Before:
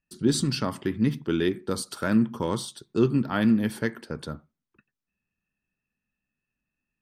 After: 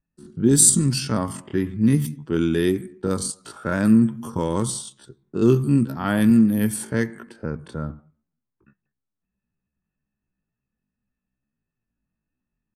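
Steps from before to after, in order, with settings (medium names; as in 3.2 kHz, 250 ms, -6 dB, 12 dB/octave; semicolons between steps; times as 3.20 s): level-controlled noise filter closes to 1.4 kHz, open at -19 dBFS; resonant high shelf 6.2 kHz +13.5 dB, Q 1.5; tempo 0.55×; tone controls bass +4 dB, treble +2 dB; trim +2.5 dB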